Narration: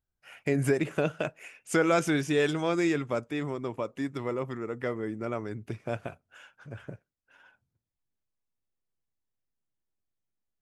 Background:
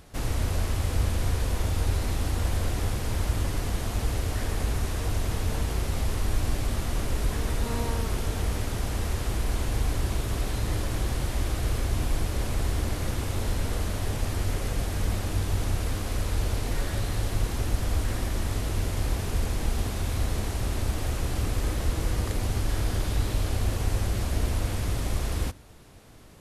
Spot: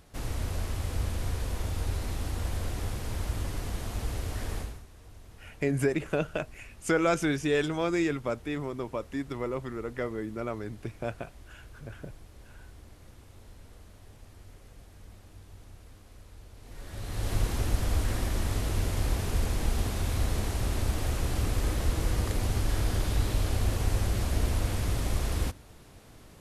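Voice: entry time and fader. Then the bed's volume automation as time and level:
5.15 s, -1.0 dB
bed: 4.58 s -5.5 dB
4.86 s -23 dB
16.54 s -23 dB
17.32 s -1 dB

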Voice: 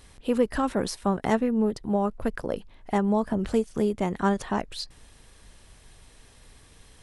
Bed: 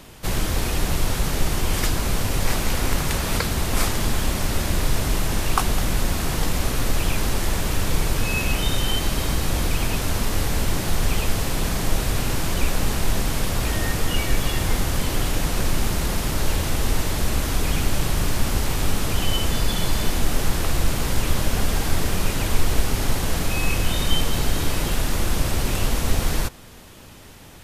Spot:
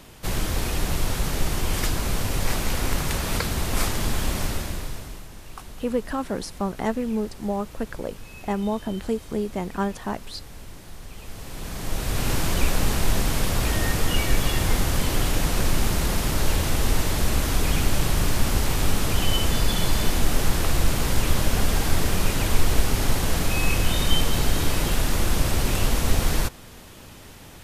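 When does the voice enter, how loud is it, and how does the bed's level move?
5.55 s, -2.0 dB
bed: 4.44 s -2.5 dB
5.3 s -19.5 dB
11.1 s -19.5 dB
12.3 s 0 dB

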